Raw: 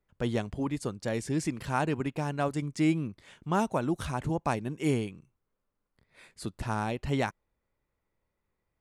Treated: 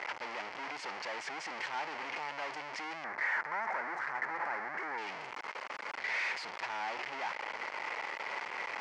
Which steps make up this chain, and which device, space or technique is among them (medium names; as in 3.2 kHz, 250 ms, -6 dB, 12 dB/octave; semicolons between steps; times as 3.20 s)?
home computer beeper (one-bit comparator; cabinet simulation 740–4700 Hz, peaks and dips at 880 Hz +6 dB, 2.1 kHz +7 dB, 3.7 kHz -9 dB); 3.04–4.98 s: resonant high shelf 2.3 kHz -8.5 dB, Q 3; trim -2.5 dB